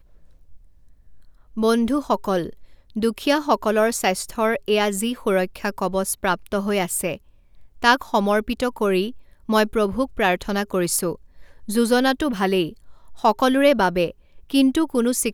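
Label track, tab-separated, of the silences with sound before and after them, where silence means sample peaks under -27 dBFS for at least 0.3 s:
2.490000	2.960000	silence
7.150000	7.830000	silence
9.100000	9.490000	silence
11.150000	11.690000	silence
12.690000	13.240000	silence
14.100000	14.500000	silence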